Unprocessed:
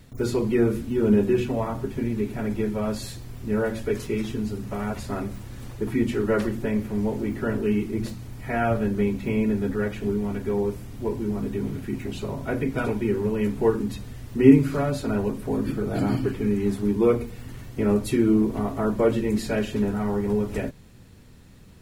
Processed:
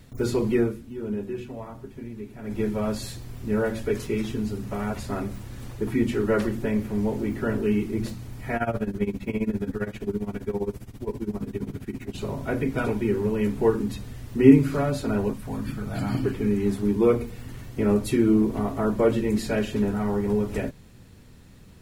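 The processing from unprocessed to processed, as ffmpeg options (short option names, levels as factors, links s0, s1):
-filter_complex "[0:a]asettb=1/sr,asplit=3[s0][s1][s2];[s0]atrim=end=8.564[s3];[s1]atrim=start=8.56:end=12.18,asetpts=PTS-STARTPTS,afade=t=in:d=0.004:c=qsin,afade=t=out:st=3.616:d=0.004:c=qsin,tremolo=f=15:d=0.87[s4];[s2]atrim=start=12.176[s5];[s3][s4]acrossfade=d=0.004:c1=hsin:c2=qsin[s6];[s6][s5]acrossfade=d=0.004:c1=qsin:c2=hsin,asettb=1/sr,asplit=3[s7][s8][s9];[s7]atrim=end=15.334[s10];[s8]atrim=start=15.33:end=16.15,asetpts=PTS-STARTPTS,afade=t=in:d=0.004:c=qsin,afade=t=out:st=0.816:d=0.004:c=qsin,equalizer=f=390:w=1.3:g=-13.5[s11];[s9]atrim=start=16.146[s12];[s10][s11]acrossfade=d=0.004:c1=hsin:c2=qsin[s13];[s13][s12]acrossfade=d=0.004:c1=qsin:c2=hsin,asplit=3[s14][s15][s16];[s14]atrim=end=0.76,asetpts=PTS-STARTPTS,afade=t=out:st=0.56:d=0.2:silence=0.281838[s17];[s15]atrim=start=0.76:end=2.42,asetpts=PTS-STARTPTS,volume=0.282[s18];[s16]atrim=start=2.42,asetpts=PTS-STARTPTS,afade=t=in:d=0.2:silence=0.281838[s19];[s17][s18][s19]concat=n=3:v=0:a=1"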